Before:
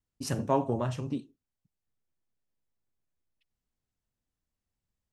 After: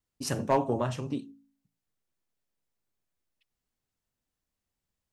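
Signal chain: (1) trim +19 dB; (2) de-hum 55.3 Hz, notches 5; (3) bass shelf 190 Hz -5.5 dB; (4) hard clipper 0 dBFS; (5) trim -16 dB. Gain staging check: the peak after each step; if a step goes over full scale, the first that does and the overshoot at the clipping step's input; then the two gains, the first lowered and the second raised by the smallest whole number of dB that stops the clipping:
+6.5 dBFS, +6.0 dBFS, +5.5 dBFS, 0.0 dBFS, -16.0 dBFS; step 1, 5.5 dB; step 1 +13 dB, step 5 -10 dB

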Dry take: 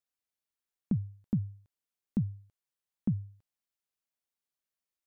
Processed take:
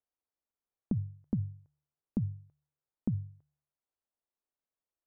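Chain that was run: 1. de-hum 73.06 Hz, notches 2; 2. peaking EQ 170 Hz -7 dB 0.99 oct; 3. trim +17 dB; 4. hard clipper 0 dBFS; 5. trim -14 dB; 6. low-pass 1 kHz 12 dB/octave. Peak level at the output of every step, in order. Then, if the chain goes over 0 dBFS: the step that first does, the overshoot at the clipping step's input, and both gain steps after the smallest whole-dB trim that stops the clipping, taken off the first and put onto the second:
-20.0 dBFS, -22.5 dBFS, -5.5 dBFS, -5.5 dBFS, -19.5 dBFS, -19.5 dBFS; nothing clips

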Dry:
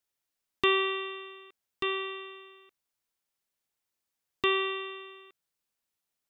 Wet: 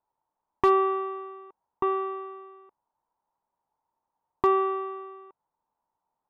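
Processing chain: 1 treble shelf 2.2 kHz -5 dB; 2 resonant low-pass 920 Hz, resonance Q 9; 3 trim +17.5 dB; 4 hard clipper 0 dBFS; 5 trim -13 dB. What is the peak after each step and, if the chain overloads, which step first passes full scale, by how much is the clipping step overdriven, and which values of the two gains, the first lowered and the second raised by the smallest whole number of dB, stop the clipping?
-14.0 dBFS, -13.0 dBFS, +4.5 dBFS, 0.0 dBFS, -13.0 dBFS; step 3, 4.5 dB; step 3 +12.5 dB, step 5 -8 dB

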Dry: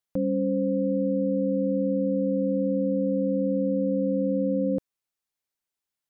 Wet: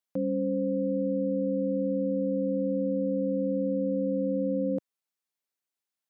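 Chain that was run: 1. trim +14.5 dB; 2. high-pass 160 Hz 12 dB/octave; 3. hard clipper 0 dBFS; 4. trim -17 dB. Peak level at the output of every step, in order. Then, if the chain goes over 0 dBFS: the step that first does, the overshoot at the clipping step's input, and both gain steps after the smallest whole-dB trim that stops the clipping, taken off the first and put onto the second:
-2.5 dBFS, -3.0 dBFS, -3.0 dBFS, -20.0 dBFS; nothing clips

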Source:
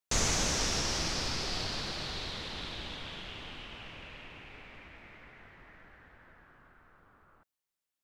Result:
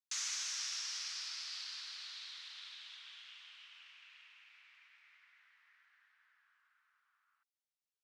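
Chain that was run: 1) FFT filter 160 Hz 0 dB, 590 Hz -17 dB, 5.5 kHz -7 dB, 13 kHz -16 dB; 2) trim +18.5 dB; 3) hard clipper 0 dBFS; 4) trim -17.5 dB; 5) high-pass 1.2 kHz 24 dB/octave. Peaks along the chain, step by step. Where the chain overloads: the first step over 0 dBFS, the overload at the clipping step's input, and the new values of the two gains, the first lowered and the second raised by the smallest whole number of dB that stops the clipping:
-22.0 dBFS, -3.5 dBFS, -3.5 dBFS, -21.0 dBFS, -27.0 dBFS; nothing clips

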